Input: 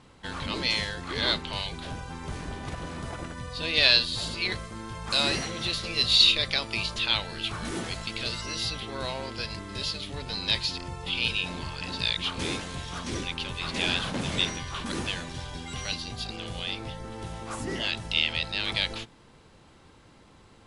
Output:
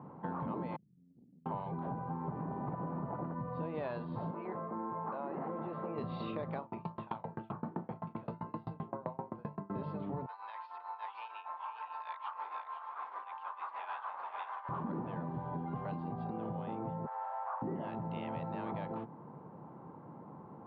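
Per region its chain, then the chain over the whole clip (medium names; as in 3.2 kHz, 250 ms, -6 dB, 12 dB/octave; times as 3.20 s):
0.76–1.46 s: brick-wall FIR band-stop 290–8400 Hz + pre-emphasis filter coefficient 0.97 + transformer saturation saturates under 1.3 kHz
4.31–5.98 s: band-pass 270–2300 Hz + compression 5:1, threshold -34 dBFS
6.59–9.70 s: doubling 35 ms -4 dB + sawtooth tremolo in dB decaying 7.7 Hz, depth 31 dB
10.26–14.69 s: delay 508 ms -5 dB + tremolo triangle 6.6 Hz, depth 75% + high-pass 940 Hz 24 dB/octave
17.06–17.62 s: one-bit delta coder 32 kbps, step -47.5 dBFS + steep high-pass 610 Hz 48 dB/octave + peaking EQ 1.6 kHz +6.5 dB 0.54 oct
whole clip: elliptic band-pass 150–960 Hz, stop band 80 dB; peaking EQ 410 Hz -9.5 dB 2.5 oct; compression, threshold -50 dBFS; trim +14 dB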